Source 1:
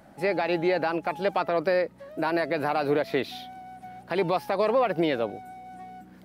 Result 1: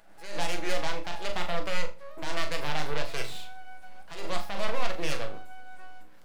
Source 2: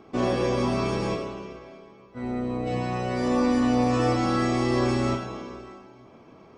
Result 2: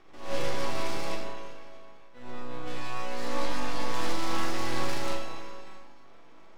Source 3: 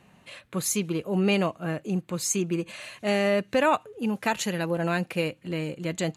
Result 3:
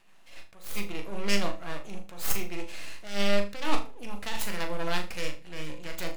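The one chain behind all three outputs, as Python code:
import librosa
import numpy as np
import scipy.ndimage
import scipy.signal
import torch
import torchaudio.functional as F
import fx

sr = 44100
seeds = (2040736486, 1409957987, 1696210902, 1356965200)

p1 = fx.self_delay(x, sr, depth_ms=0.2)
p2 = fx.highpass(p1, sr, hz=890.0, slope=6)
p3 = np.maximum(p2, 0.0)
p4 = p3 + fx.room_flutter(p3, sr, wall_m=6.8, rt60_s=0.27, dry=0)
p5 = fx.room_shoebox(p4, sr, seeds[0], volume_m3=120.0, walls='furnished', distance_m=0.69)
p6 = fx.attack_slew(p5, sr, db_per_s=120.0)
y = p6 * 10.0 ** (2.0 / 20.0)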